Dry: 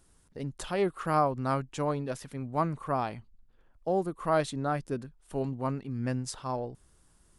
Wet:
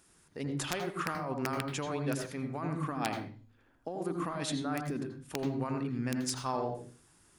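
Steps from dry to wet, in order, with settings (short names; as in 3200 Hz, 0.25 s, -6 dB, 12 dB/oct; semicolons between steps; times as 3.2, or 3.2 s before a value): 2.74–4.96 bell 260 Hz +13 dB -> +5 dB 0.28 oct; negative-ratio compressor -32 dBFS, ratio -1; wrapped overs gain 20.5 dB; reverb RT60 0.40 s, pre-delay 78 ms, DRR 6.5 dB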